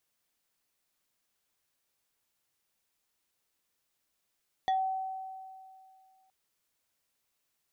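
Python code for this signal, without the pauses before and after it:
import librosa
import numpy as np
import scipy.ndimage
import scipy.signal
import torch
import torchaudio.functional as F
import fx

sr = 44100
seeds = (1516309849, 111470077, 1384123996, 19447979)

y = fx.fm2(sr, length_s=1.62, level_db=-24.0, carrier_hz=761.0, ratio=3.47, index=0.54, index_s=0.18, decay_s=2.32, shape='exponential')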